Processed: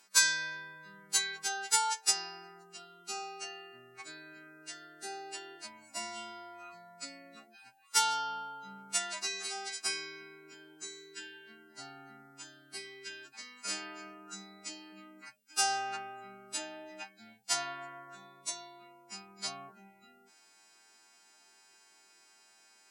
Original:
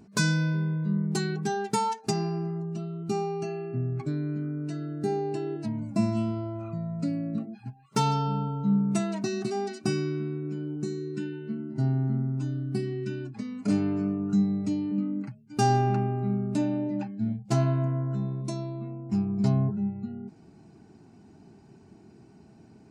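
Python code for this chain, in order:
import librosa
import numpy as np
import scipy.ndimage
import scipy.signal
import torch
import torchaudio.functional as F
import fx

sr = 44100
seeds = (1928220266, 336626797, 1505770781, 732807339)

y = fx.freq_snap(x, sr, grid_st=2)
y = scipy.signal.sosfilt(scipy.signal.butter(2, 1400.0, 'highpass', fs=sr, output='sos'), y)
y = y * librosa.db_to_amplitude(3.0)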